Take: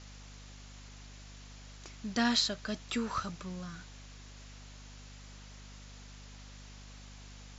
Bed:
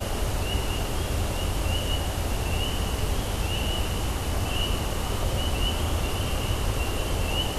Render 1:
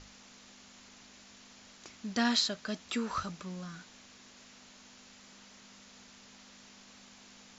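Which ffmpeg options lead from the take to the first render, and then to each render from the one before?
ffmpeg -i in.wav -af "bandreject=frequency=50:width_type=h:width=6,bandreject=frequency=100:width_type=h:width=6,bandreject=frequency=150:width_type=h:width=6" out.wav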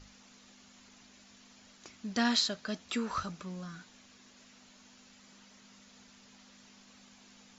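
ffmpeg -i in.wav -af "afftdn=noise_reduction=6:noise_floor=-57" out.wav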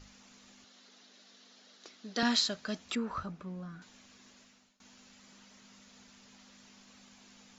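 ffmpeg -i in.wav -filter_complex "[0:a]asettb=1/sr,asplit=3[link_01][link_02][link_03];[link_01]atrim=end=0.644[link_04];[link_02]atrim=start=0.64:end=2.23,asetpts=PTS-STARTPTS,afade=type=in:duration=0.004:curve=qsin,afade=type=out:start_time=1.586:duration=0.004:curve=qsin,highpass=300,equalizer=frequency=460:width_type=q:width=4:gain=4,equalizer=frequency=970:width_type=q:width=4:gain=-5,equalizer=frequency=2400:width_type=q:width=4:gain=-5,equalizer=frequency=3900:width_type=q:width=4:gain=5,lowpass=frequency=6300:width=0.5412,lowpass=frequency=6300:width=1.3066[link_05];[link_03]atrim=start=2.226[link_06];[link_04][link_05]acrossfade=duration=0.004:curve1=hsin:curve2=qsin[link_07];[link_07][link_06]acrossfade=duration=0.004:curve1=qsin:curve2=hsin,asettb=1/sr,asplit=3[link_08][link_09][link_10];[link_08]atrim=end=2.954[link_11];[link_09]atrim=start=2.95:end=3.82,asetpts=PTS-STARTPTS,afade=type=in:duration=0.004:curve=qsin,afade=type=out:start_time=0.866:duration=0.004:curve=qsin,lowpass=frequency=1100:poles=1[link_12];[link_10]atrim=start=3.816[link_13];[link_11][link_12]acrossfade=duration=0.004:curve1=hsin:curve2=qsin[link_14];[link_14][link_13]acrossfade=duration=0.004:curve1=qsin:curve2=hsin,asplit=2[link_15][link_16];[link_15]atrim=end=4.8,asetpts=PTS-STARTPTS,afade=type=out:start_time=4.32:duration=0.48:silence=0.0668344[link_17];[link_16]atrim=start=4.8,asetpts=PTS-STARTPTS,afade=type=in:duration=0.004:curve=hsin:silence=0.0668344[link_18];[link_17][link_18]concat=n=2:v=0:a=1" out.wav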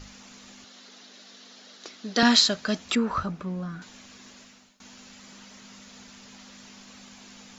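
ffmpeg -i in.wav -af "volume=10dB" out.wav

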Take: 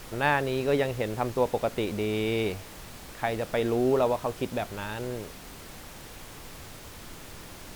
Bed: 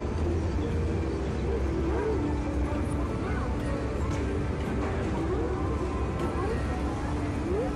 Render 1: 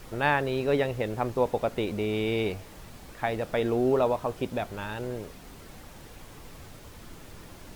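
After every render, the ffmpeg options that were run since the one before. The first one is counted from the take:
ffmpeg -i in.wav -af "afftdn=noise_reduction=6:noise_floor=-45" out.wav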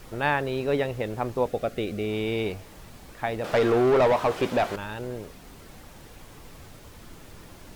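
ffmpeg -i in.wav -filter_complex "[0:a]asettb=1/sr,asplit=3[link_01][link_02][link_03];[link_01]atrim=end=1.474[link_04];[link_02]atrim=start=1.47:end=2.05,asetpts=PTS-STARTPTS,afade=type=in:duration=0.004:curve=qsin,afade=type=out:start_time=0.576:duration=0.004:curve=qsin,asuperstop=centerf=940:order=4:qfactor=2.9[link_05];[link_03]atrim=start=2.046[link_06];[link_04][link_05]acrossfade=duration=0.004:curve1=hsin:curve2=qsin[link_07];[link_07][link_06]acrossfade=duration=0.004:curve1=qsin:curve2=hsin,asettb=1/sr,asplit=3[link_08][link_09][link_10];[link_08]atrim=end=3.444[link_11];[link_09]atrim=start=3.44:end=4.76,asetpts=PTS-STARTPTS,afade=type=in:duration=0.004:curve=qsin,afade=type=out:start_time=1.316:duration=0.004:curve=qsin,asplit=2[link_12][link_13];[link_13]highpass=frequency=720:poles=1,volume=22dB,asoftclip=type=tanh:threshold=-12.5dB[link_14];[link_12][link_14]amix=inputs=2:normalize=0,lowpass=frequency=2700:poles=1,volume=-6dB[link_15];[link_10]atrim=start=4.756[link_16];[link_11][link_15]acrossfade=duration=0.004:curve1=hsin:curve2=qsin[link_17];[link_17][link_16]acrossfade=duration=0.004:curve1=qsin:curve2=hsin" out.wav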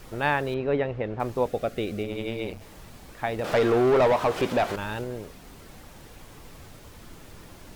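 ffmpeg -i in.wav -filter_complex "[0:a]asettb=1/sr,asplit=3[link_01][link_02][link_03];[link_01]atrim=end=0.544[link_04];[link_02]atrim=start=0.54:end=1.2,asetpts=PTS-STARTPTS,afade=type=in:duration=0.004:curve=qsin,afade=type=out:start_time=0.656:duration=0.004:curve=qsin,lowpass=2400[link_05];[link_03]atrim=start=1.196[link_06];[link_04][link_05]acrossfade=duration=0.004:curve1=hsin:curve2=qsin[link_07];[link_07][link_06]acrossfade=duration=0.004:curve1=qsin:curve2=hsin,asplit=3[link_08][link_09][link_10];[link_08]afade=type=out:start_time=2.02:duration=0.02[link_11];[link_09]tremolo=f=120:d=0.919,afade=type=in:start_time=2.02:duration=0.02,afade=type=out:start_time=2.6:duration=0.02[link_12];[link_10]afade=type=in:start_time=2.6:duration=0.02[link_13];[link_11][link_12][link_13]amix=inputs=3:normalize=0,asettb=1/sr,asplit=3[link_14][link_15][link_16];[link_14]atrim=end=3.394[link_17];[link_15]atrim=start=3.39:end=5.04,asetpts=PTS-STARTPTS,afade=type=in:duration=0.004:curve=qsin,afade=type=out:start_time=1.646:duration=0.004:curve=qsin,acompressor=mode=upward:threshold=-24dB:ratio=2.5:attack=3.2:release=140:knee=2.83:detection=peak[link_18];[link_16]atrim=start=5.036[link_19];[link_17][link_18]acrossfade=duration=0.004:curve1=hsin:curve2=qsin[link_20];[link_20][link_19]acrossfade=duration=0.004:curve1=qsin:curve2=hsin" out.wav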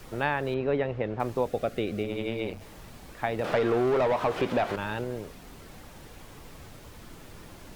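ffmpeg -i in.wav -filter_complex "[0:a]acrossover=split=97|3900[link_01][link_02][link_03];[link_01]acompressor=threshold=-45dB:ratio=4[link_04];[link_02]acompressor=threshold=-22dB:ratio=4[link_05];[link_03]acompressor=threshold=-54dB:ratio=4[link_06];[link_04][link_05][link_06]amix=inputs=3:normalize=0" out.wav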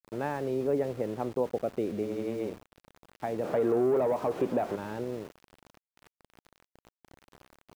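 ffmpeg -i in.wav -af "bandpass=frequency=330:width_type=q:width=0.71:csg=0,aeval=exprs='val(0)*gte(abs(val(0)),0.00596)':channel_layout=same" out.wav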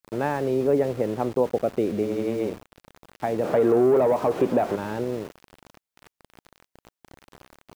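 ffmpeg -i in.wav -af "volume=7dB" out.wav

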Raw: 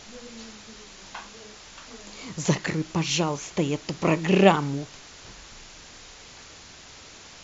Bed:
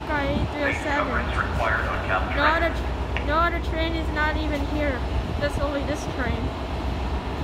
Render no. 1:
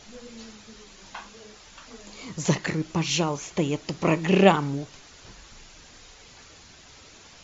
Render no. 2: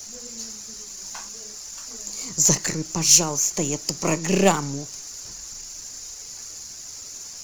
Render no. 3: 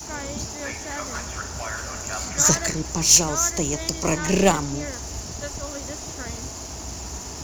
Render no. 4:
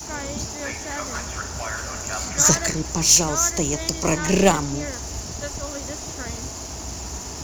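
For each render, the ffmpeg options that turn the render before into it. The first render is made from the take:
ffmpeg -i in.wav -af "afftdn=noise_reduction=6:noise_floor=-47" out.wav
ffmpeg -i in.wav -filter_complex "[0:a]aeval=exprs='if(lt(val(0),0),0.708*val(0),val(0))':channel_layout=same,acrossover=split=170|770|1800[link_01][link_02][link_03][link_04];[link_04]aexciter=amount=13.1:drive=2.6:freq=5000[link_05];[link_01][link_02][link_03][link_05]amix=inputs=4:normalize=0" out.wav
ffmpeg -i in.wav -i bed.wav -filter_complex "[1:a]volume=-9dB[link_01];[0:a][link_01]amix=inputs=2:normalize=0" out.wav
ffmpeg -i in.wav -af "volume=1.5dB,alimiter=limit=-3dB:level=0:latency=1" out.wav

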